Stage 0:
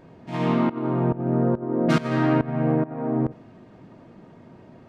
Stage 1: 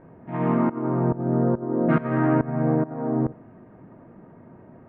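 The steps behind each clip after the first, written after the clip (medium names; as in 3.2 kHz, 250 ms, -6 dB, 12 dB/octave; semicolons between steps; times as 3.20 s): low-pass 1.9 kHz 24 dB/octave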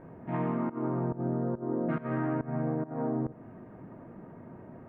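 compression, threshold -28 dBFS, peak gain reduction 13 dB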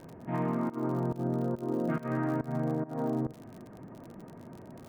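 crackle 61 per s -40 dBFS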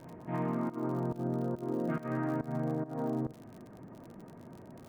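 reverse echo 270 ms -20 dB; trim -2.5 dB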